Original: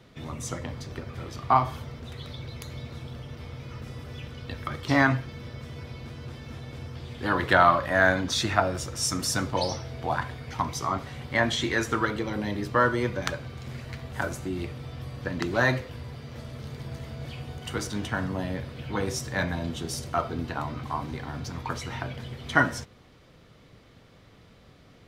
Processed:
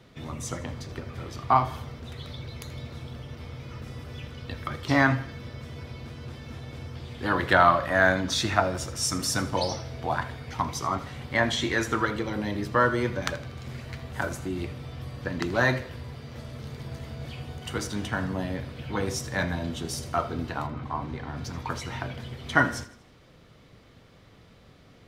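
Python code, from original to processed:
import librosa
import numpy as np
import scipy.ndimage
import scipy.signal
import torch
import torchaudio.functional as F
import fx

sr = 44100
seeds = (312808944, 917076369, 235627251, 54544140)

y = fx.lowpass(x, sr, hz=fx.line((20.66, 1500.0), (21.36, 3700.0)), slope=6, at=(20.66, 21.36), fade=0.02)
y = fx.echo_feedback(y, sr, ms=80, feedback_pct=47, wet_db=-17.5)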